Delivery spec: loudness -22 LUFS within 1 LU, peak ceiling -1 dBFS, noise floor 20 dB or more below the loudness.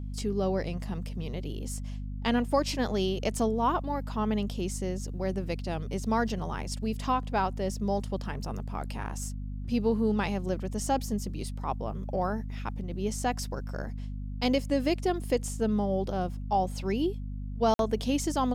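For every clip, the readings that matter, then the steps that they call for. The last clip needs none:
dropouts 1; longest dropout 52 ms; hum 50 Hz; highest harmonic 250 Hz; hum level -33 dBFS; loudness -31.0 LUFS; peak level -13.5 dBFS; loudness target -22.0 LUFS
-> interpolate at 17.74 s, 52 ms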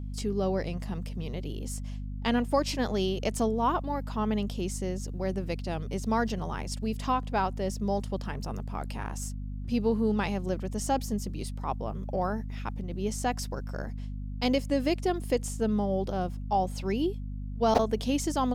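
dropouts 0; hum 50 Hz; highest harmonic 250 Hz; hum level -33 dBFS
-> hum notches 50/100/150/200/250 Hz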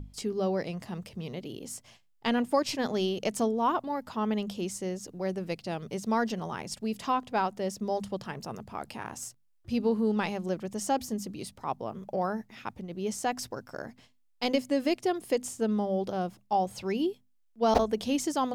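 hum not found; loudness -31.5 LUFS; peak level -8.5 dBFS; loudness target -22.0 LUFS
-> trim +9.5 dB; peak limiter -1 dBFS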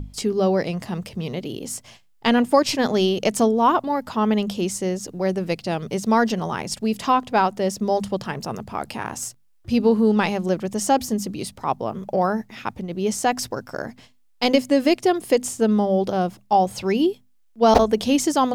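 loudness -22.0 LUFS; peak level -1.0 dBFS; noise floor -57 dBFS

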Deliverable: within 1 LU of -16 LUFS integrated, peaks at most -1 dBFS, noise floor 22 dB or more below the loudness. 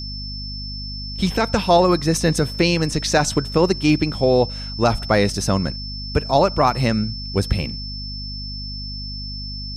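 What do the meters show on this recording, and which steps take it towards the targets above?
hum 50 Hz; highest harmonic 250 Hz; hum level -30 dBFS; steady tone 5.3 kHz; tone level -31 dBFS; loudness -20.5 LUFS; peak level -3.5 dBFS; loudness target -16.0 LUFS
-> de-hum 50 Hz, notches 5; band-stop 5.3 kHz, Q 30; trim +4.5 dB; peak limiter -1 dBFS

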